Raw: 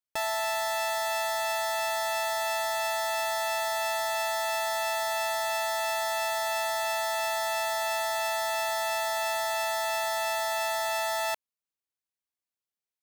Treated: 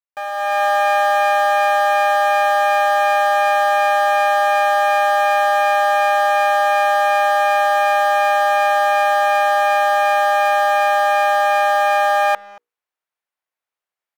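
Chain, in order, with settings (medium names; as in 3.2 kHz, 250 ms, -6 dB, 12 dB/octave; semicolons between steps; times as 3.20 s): speed mistake 48 kHz file played as 44.1 kHz; three-band isolator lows -15 dB, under 460 Hz, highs -13 dB, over 2.5 kHz; hum notches 60/120/180/240/300/360/420/480 Hz; speakerphone echo 230 ms, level -21 dB; level rider gain up to 11.5 dB; dynamic bell 1 kHz, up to +6 dB, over -44 dBFS, Q 0.82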